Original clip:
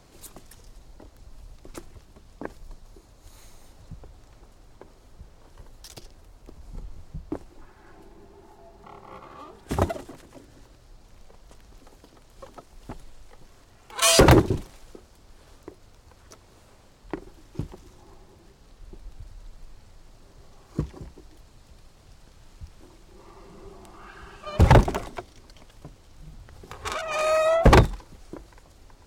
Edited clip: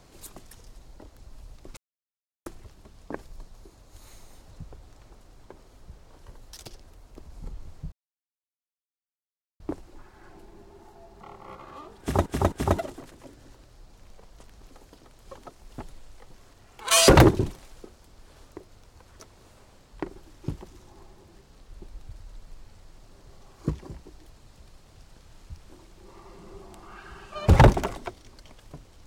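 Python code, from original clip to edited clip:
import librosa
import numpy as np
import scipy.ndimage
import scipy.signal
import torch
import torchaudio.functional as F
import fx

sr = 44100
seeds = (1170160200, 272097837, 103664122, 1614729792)

y = fx.edit(x, sr, fx.insert_silence(at_s=1.77, length_s=0.69),
    fx.insert_silence(at_s=7.23, length_s=1.68),
    fx.repeat(start_s=9.63, length_s=0.26, count=3), tone=tone)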